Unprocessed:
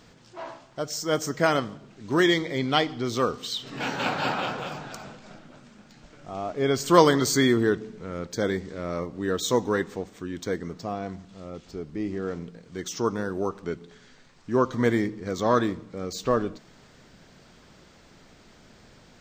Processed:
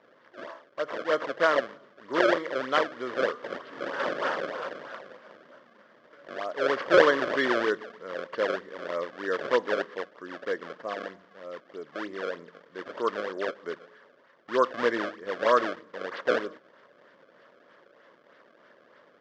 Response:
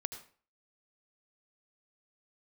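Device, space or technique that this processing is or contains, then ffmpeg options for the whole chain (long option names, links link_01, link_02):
circuit-bent sampling toy: -af "acrusher=samples=27:mix=1:aa=0.000001:lfo=1:lforange=43.2:lforate=3.2,highpass=480,equalizer=frequency=550:width_type=q:width=4:gain=7,equalizer=frequency=790:width_type=q:width=4:gain=-9,equalizer=frequency=1100:width_type=q:width=4:gain=4,equalizer=frequency=1700:width_type=q:width=4:gain=5,equalizer=frequency=2500:width_type=q:width=4:gain=-8,equalizer=frequency=4000:width_type=q:width=4:gain=-7,lowpass=frequency=4200:width=0.5412,lowpass=frequency=4200:width=1.3066"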